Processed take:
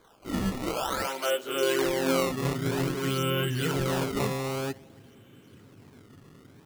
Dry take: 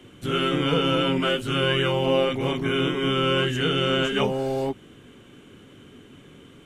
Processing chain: high-pass sweep 1300 Hz -> 100 Hz, 0.65–2.75; analogue delay 99 ms, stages 1024, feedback 72%, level -23.5 dB; decimation with a swept rate 16×, swing 160% 0.52 Hz; gain -6.5 dB

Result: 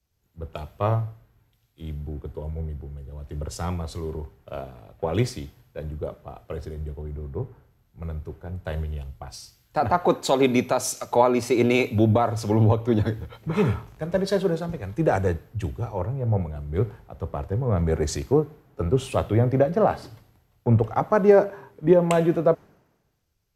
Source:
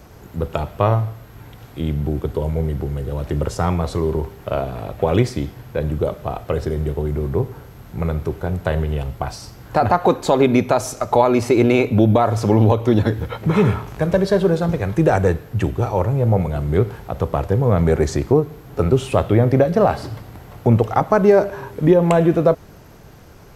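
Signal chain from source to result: three-band expander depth 100%; gain -7 dB

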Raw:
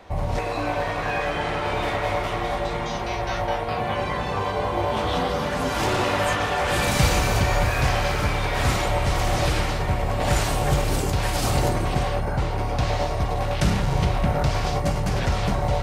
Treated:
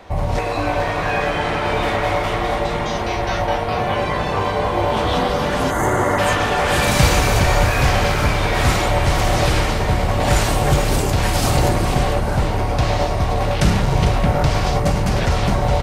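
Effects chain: spectral delete 5.71–6.18, 2200–6000 Hz; frequency-shifting echo 0.45 s, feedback 47%, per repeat -130 Hz, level -10.5 dB; gain +5 dB

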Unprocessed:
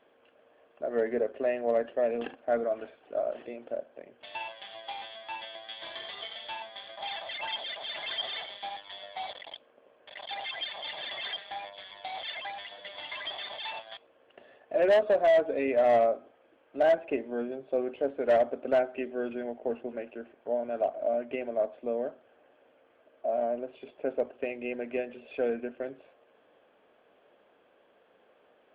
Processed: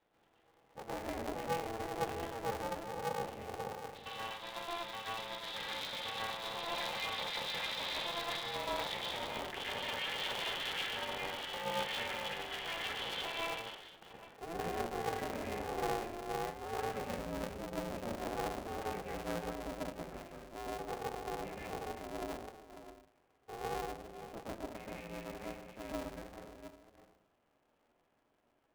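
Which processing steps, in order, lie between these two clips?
reverse delay 0.353 s, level -11 dB; Doppler pass-by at 9.19, 23 m/s, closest 7.7 m; reverse; compressor 20:1, threshold -56 dBFS, peak gain reduction 18 dB; reverse; reverb RT60 0.65 s, pre-delay 0.115 s, DRR -5 dB; polarity switched at an audio rate 170 Hz; gain +15.5 dB

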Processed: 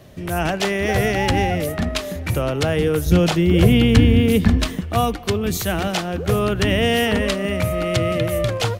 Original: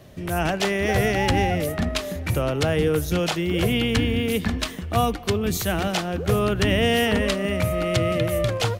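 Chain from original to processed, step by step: 3.06–4.81 low shelf 360 Hz +9.5 dB; gain +2 dB

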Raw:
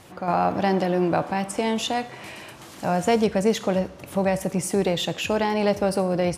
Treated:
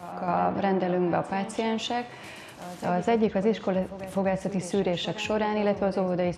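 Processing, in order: treble ducked by the level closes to 2600 Hz, closed at -17 dBFS; reverse echo 0.252 s -13.5 dB; gain -3.5 dB

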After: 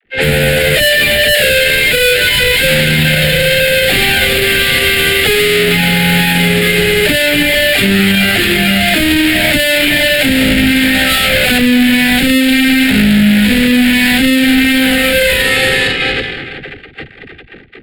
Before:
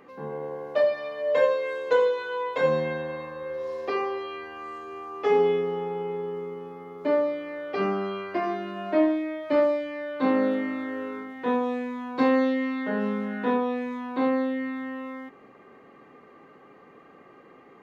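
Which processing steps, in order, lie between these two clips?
3–4.59 median filter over 25 samples; on a send: thinning echo 0.459 s, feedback 84%, high-pass 650 Hz, level -8 dB; on the sum: envelope flanger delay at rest 2.8 ms, full sweep at -18.5 dBFS; 10.94–11.58 small resonant body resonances 760/1300 Hz, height 17 dB, ringing for 25 ms; fuzz box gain 50 dB, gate -53 dBFS; gate -18 dBFS, range -39 dB; high shelf 4200 Hz +3.5 dB; fixed phaser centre 2600 Hz, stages 4; dispersion lows, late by 51 ms, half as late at 360 Hz; low-pass opened by the level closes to 1700 Hz, open at -16 dBFS; band shelf 580 Hz -9 dB 2.4 oct; maximiser +17.5 dB; gain -1 dB

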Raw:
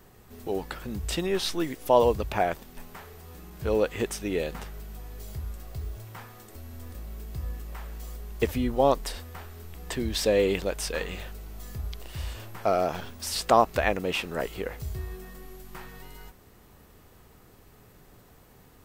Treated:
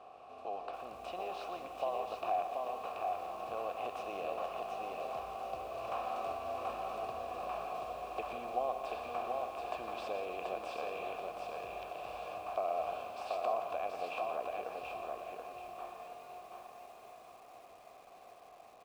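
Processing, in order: per-bin compression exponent 0.6; Doppler pass-by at 7.12, 13 m/s, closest 7.6 m; low shelf 80 Hz +8.5 dB; compressor 6:1, threshold -41 dBFS, peak gain reduction 17.5 dB; vowel filter a; loudspeakers at several distances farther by 41 m -11 dB, 59 m -11 dB; lo-fi delay 0.732 s, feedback 35%, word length 13-bit, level -3 dB; gain +16.5 dB

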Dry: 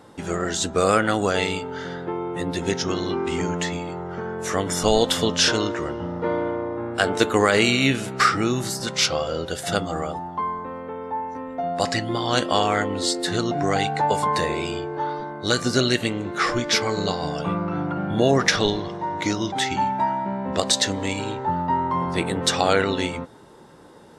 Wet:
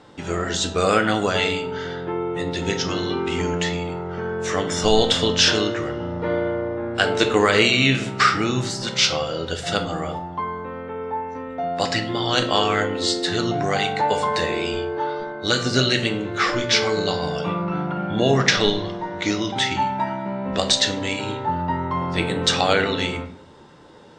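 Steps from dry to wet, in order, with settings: LPF 7700 Hz 24 dB/oct; bell 3000 Hz +5 dB 1.2 oct; reverb RT60 0.55 s, pre-delay 7 ms, DRR 6 dB; gain -1 dB

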